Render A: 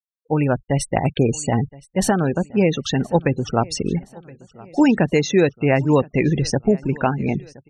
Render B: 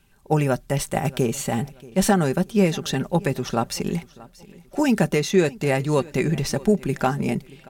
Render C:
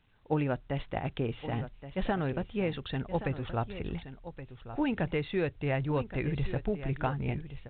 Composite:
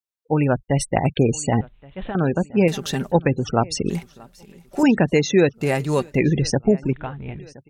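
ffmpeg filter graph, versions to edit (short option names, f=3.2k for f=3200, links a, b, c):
-filter_complex "[2:a]asplit=2[a][b];[1:a]asplit=3[c][d][e];[0:a]asplit=6[f][g][h][i][j][k];[f]atrim=end=1.612[l];[a]atrim=start=1.608:end=2.152[m];[g]atrim=start=2.148:end=2.682[n];[c]atrim=start=2.678:end=3.122[o];[h]atrim=start=3.118:end=3.902[p];[d]atrim=start=3.898:end=4.832[q];[i]atrim=start=4.828:end=5.69[r];[e]atrim=start=5.53:end=6.19[s];[j]atrim=start=6.03:end=6.932[t];[b]atrim=start=6.928:end=7.392[u];[k]atrim=start=7.388[v];[l][m]acrossfade=d=0.004:c1=hsin:c2=hsin[w];[w][n]acrossfade=d=0.004:c1=hsin:c2=hsin[x];[x][o]acrossfade=d=0.004:c1=hsin:c2=hsin[y];[y][p]acrossfade=d=0.004:c1=hsin:c2=hsin[z];[z][q]acrossfade=d=0.004:c1=hsin:c2=hsin[aa];[aa][r]acrossfade=d=0.004:c1=hsin:c2=hsin[ab];[ab][s]acrossfade=d=0.16:c1=tri:c2=tri[ac];[ac][t]acrossfade=d=0.16:c1=tri:c2=tri[ad];[ad][u]acrossfade=d=0.004:c1=hsin:c2=hsin[ae];[ae][v]acrossfade=d=0.004:c1=hsin:c2=hsin"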